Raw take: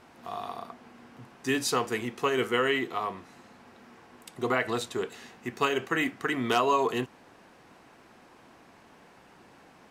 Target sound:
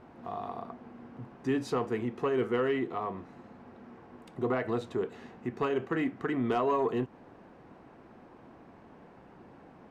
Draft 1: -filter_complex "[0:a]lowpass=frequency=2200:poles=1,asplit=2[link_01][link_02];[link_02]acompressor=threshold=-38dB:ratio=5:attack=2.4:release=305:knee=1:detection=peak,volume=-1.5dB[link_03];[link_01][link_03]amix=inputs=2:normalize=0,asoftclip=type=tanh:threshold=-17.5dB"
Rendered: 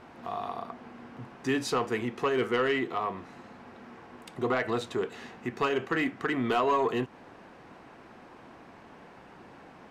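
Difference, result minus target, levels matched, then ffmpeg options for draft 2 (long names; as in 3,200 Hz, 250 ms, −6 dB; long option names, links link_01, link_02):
2,000 Hz band +5.0 dB
-filter_complex "[0:a]lowpass=frequency=570:poles=1,asplit=2[link_01][link_02];[link_02]acompressor=threshold=-38dB:ratio=5:attack=2.4:release=305:knee=1:detection=peak,volume=-1.5dB[link_03];[link_01][link_03]amix=inputs=2:normalize=0,asoftclip=type=tanh:threshold=-17.5dB"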